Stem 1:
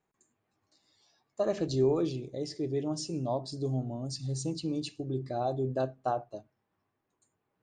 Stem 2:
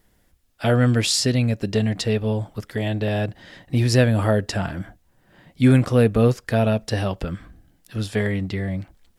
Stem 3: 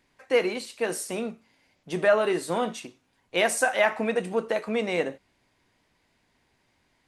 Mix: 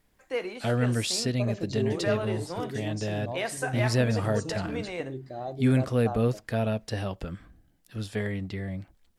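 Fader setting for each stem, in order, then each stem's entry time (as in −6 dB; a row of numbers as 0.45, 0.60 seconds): −4.5, −8.0, −8.5 decibels; 0.00, 0.00, 0.00 seconds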